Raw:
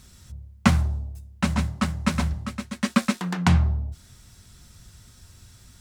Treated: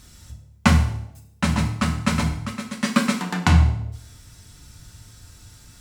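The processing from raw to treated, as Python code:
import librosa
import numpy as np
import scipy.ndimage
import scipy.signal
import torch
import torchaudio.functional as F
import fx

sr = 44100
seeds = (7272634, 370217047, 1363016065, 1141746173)

y = fx.rev_fdn(x, sr, rt60_s=0.65, lf_ratio=0.85, hf_ratio=0.95, size_ms=20.0, drr_db=2.5)
y = y * librosa.db_to_amplitude(2.0)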